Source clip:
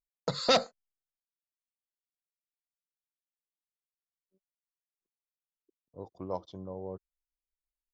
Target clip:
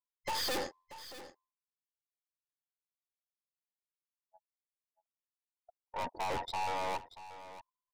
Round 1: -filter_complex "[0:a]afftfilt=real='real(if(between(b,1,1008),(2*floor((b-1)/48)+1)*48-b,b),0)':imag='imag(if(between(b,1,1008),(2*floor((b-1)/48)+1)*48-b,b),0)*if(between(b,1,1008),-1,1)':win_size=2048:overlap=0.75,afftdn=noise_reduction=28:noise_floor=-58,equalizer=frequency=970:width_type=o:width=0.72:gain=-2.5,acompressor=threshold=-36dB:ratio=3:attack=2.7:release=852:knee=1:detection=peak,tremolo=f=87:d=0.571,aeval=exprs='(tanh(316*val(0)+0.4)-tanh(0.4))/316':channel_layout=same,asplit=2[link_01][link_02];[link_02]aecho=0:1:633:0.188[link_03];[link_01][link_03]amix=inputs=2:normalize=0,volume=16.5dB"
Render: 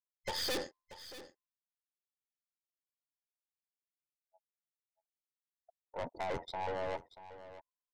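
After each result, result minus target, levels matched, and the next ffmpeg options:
downward compressor: peak gain reduction +6.5 dB; 1,000 Hz band −3.5 dB
-filter_complex "[0:a]afftfilt=real='real(if(between(b,1,1008),(2*floor((b-1)/48)+1)*48-b,b),0)':imag='imag(if(between(b,1,1008),(2*floor((b-1)/48)+1)*48-b,b),0)*if(between(b,1,1008),-1,1)':win_size=2048:overlap=0.75,afftdn=noise_reduction=28:noise_floor=-58,equalizer=frequency=970:width_type=o:width=0.72:gain=-2.5,acompressor=threshold=-24.5dB:ratio=3:attack=2.7:release=852:knee=1:detection=peak,tremolo=f=87:d=0.571,aeval=exprs='(tanh(316*val(0)+0.4)-tanh(0.4))/316':channel_layout=same,asplit=2[link_01][link_02];[link_02]aecho=0:1:633:0.188[link_03];[link_01][link_03]amix=inputs=2:normalize=0,volume=16.5dB"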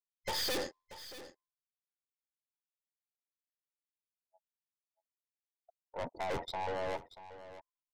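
1,000 Hz band −3.5 dB
-filter_complex "[0:a]afftfilt=real='real(if(between(b,1,1008),(2*floor((b-1)/48)+1)*48-b,b),0)':imag='imag(if(between(b,1,1008),(2*floor((b-1)/48)+1)*48-b,b),0)*if(between(b,1,1008),-1,1)':win_size=2048:overlap=0.75,afftdn=noise_reduction=28:noise_floor=-58,equalizer=frequency=970:width_type=o:width=0.72:gain=9,acompressor=threshold=-24.5dB:ratio=3:attack=2.7:release=852:knee=1:detection=peak,tremolo=f=87:d=0.571,aeval=exprs='(tanh(316*val(0)+0.4)-tanh(0.4))/316':channel_layout=same,asplit=2[link_01][link_02];[link_02]aecho=0:1:633:0.188[link_03];[link_01][link_03]amix=inputs=2:normalize=0,volume=16.5dB"

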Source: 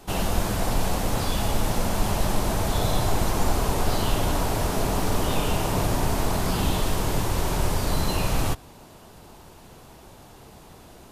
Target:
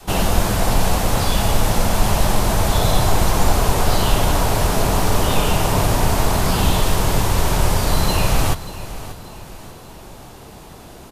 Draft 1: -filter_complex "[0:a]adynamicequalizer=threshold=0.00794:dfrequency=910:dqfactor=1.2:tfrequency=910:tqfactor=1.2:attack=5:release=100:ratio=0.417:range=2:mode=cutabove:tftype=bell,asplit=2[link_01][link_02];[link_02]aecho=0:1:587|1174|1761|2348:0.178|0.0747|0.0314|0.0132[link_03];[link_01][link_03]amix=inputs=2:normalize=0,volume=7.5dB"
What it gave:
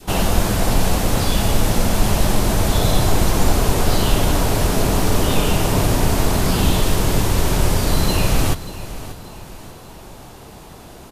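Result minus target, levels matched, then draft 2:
1,000 Hz band −3.0 dB
-filter_complex "[0:a]adynamicequalizer=threshold=0.00794:dfrequency=290:dqfactor=1.2:tfrequency=290:tqfactor=1.2:attack=5:release=100:ratio=0.417:range=2:mode=cutabove:tftype=bell,asplit=2[link_01][link_02];[link_02]aecho=0:1:587|1174|1761|2348:0.178|0.0747|0.0314|0.0132[link_03];[link_01][link_03]amix=inputs=2:normalize=0,volume=7.5dB"

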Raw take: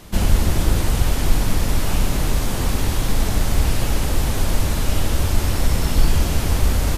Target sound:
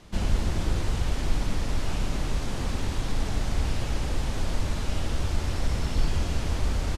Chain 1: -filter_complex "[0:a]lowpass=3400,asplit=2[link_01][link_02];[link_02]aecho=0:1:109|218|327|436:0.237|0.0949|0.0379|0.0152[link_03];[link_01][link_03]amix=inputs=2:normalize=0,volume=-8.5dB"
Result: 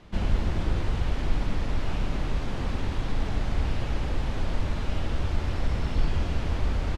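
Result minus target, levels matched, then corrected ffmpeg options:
8,000 Hz band −10.0 dB
-filter_complex "[0:a]lowpass=6900,asplit=2[link_01][link_02];[link_02]aecho=0:1:109|218|327|436:0.237|0.0949|0.0379|0.0152[link_03];[link_01][link_03]amix=inputs=2:normalize=0,volume=-8.5dB"

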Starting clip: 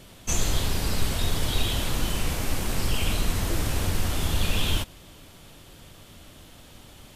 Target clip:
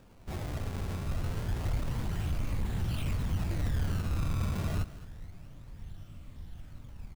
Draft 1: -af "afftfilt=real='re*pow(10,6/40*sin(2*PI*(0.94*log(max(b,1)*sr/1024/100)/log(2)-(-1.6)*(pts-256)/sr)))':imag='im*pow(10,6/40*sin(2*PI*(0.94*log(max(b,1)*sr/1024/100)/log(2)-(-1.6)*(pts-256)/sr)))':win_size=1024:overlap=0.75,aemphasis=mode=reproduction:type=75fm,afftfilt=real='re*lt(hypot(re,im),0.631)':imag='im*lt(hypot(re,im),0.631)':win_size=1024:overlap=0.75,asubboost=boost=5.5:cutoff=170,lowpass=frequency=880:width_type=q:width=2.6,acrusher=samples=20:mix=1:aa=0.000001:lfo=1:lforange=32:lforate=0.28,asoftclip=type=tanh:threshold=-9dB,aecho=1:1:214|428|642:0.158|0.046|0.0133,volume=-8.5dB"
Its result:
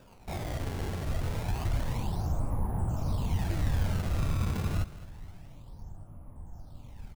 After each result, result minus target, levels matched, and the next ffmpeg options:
soft clipping: distortion −8 dB; 1,000 Hz band +3.0 dB
-af "afftfilt=real='re*pow(10,6/40*sin(2*PI*(0.94*log(max(b,1)*sr/1024/100)/log(2)-(-1.6)*(pts-256)/sr)))':imag='im*pow(10,6/40*sin(2*PI*(0.94*log(max(b,1)*sr/1024/100)/log(2)-(-1.6)*(pts-256)/sr)))':win_size=1024:overlap=0.75,aemphasis=mode=reproduction:type=75fm,afftfilt=real='re*lt(hypot(re,im),0.631)':imag='im*lt(hypot(re,im),0.631)':win_size=1024:overlap=0.75,asubboost=boost=5.5:cutoff=170,lowpass=frequency=880:width_type=q:width=2.6,acrusher=samples=20:mix=1:aa=0.000001:lfo=1:lforange=32:lforate=0.28,asoftclip=type=tanh:threshold=-15.5dB,aecho=1:1:214|428|642:0.158|0.046|0.0133,volume=-8.5dB"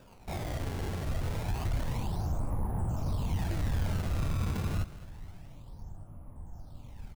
1,000 Hz band +3.0 dB
-af "afftfilt=real='re*pow(10,6/40*sin(2*PI*(0.94*log(max(b,1)*sr/1024/100)/log(2)-(-1.6)*(pts-256)/sr)))':imag='im*pow(10,6/40*sin(2*PI*(0.94*log(max(b,1)*sr/1024/100)/log(2)-(-1.6)*(pts-256)/sr)))':win_size=1024:overlap=0.75,aemphasis=mode=reproduction:type=75fm,afftfilt=real='re*lt(hypot(re,im),0.631)':imag='im*lt(hypot(re,im),0.631)':win_size=1024:overlap=0.75,asubboost=boost=5.5:cutoff=170,acrusher=samples=20:mix=1:aa=0.000001:lfo=1:lforange=32:lforate=0.28,asoftclip=type=tanh:threshold=-15.5dB,aecho=1:1:214|428|642:0.158|0.046|0.0133,volume=-8.5dB"

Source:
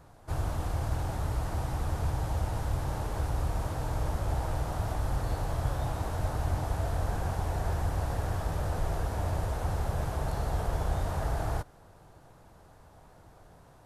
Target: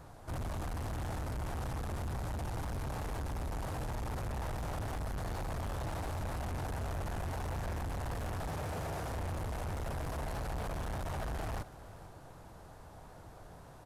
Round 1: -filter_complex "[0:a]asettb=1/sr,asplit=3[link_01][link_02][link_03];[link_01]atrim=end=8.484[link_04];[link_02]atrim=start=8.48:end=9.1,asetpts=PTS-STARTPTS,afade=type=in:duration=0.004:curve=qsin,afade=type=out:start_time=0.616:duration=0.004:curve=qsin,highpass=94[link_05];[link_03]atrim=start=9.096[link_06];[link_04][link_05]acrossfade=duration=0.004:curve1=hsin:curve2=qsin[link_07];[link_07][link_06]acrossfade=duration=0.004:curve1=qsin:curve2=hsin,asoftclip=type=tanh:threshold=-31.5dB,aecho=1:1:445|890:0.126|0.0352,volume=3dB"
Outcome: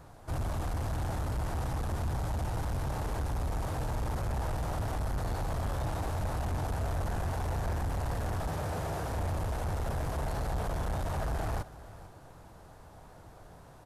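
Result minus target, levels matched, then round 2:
soft clipping: distortion −4 dB
-filter_complex "[0:a]asettb=1/sr,asplit=3[link_01][link_02][link_03];[link_01]atrim=end=8.484[link_04];[link_02]atrim=start=8.48:end=9.1,asetpts=PTS-STARTPTS,afade=type=in:duration=0.004:curve=qsin,afade=type=out:start_time=0.616:duration=0.004:curve=qsin,highpass=94[link_05];[link_03]atrim=start=9.096[link_06];[link_04][link_05]acrossfade=duration=0.004:curve1=hsin:curve2=qsin[link_07];[link_07][link_06]acrossfade=duration=0.004:curve1=qsin:curve2=hsin,asoftclip=type=tanh:threshold=-38.5dB,aecho=1:1:445|890:0.126|0.0352,volume=3dB"

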